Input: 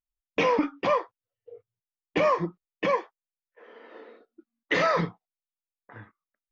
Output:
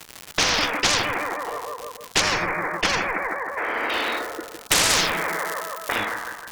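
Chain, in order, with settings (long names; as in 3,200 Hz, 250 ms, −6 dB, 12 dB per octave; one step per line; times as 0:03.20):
automatic gain control gain up to 15 dB
high-pass filter 660 Hz 12 dB per octave
surface crackle 220 per second −45 dBFS
0:04.90–0:05.98: spectral tilt +2 dB per octave
bucket-brigade delay 157 ms, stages 2,048, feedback 49%, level −14.5 dB
harmonic generator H 8 −31 dB, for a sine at −2 dBFS
0:02.21–0:03.90: high shelf with overshoot 2,400 Hz −9 dB, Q 3
every bin compressed towards the loudest bin 10 to 1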